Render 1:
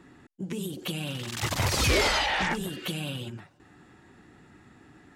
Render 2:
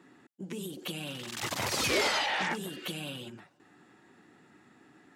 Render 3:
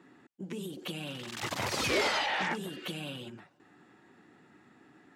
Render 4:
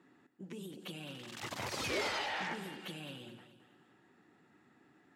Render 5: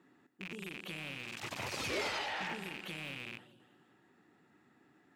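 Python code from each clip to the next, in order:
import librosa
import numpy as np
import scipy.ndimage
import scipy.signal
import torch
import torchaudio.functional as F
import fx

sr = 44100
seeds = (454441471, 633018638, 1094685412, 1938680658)

y1 = scipy.signal.sosfilt(scipy.signal.butter(2, 190.0, 'highpass', fs=sr, output='sos'), x)
y1 = F.gain(torch.from_numpy(y1), -3.5).numpy()
y2 = fx.high_shelf(y1, sr, hz=5600.0, db=-7.0)
y3 = fx.echo_feedback(y2, sr, ms=214, feedback_pct=40, wet_db=-12.0)
y3 = F.gain(torch.from_numpy(y3), -7.0).numpy()
y4 = fx.rattle_buzz(y3, sr, strikes_db=-54.0, level_db=-31.0)
y4 = F.gain(torch.from_numpy(y4), -1.0).numpy()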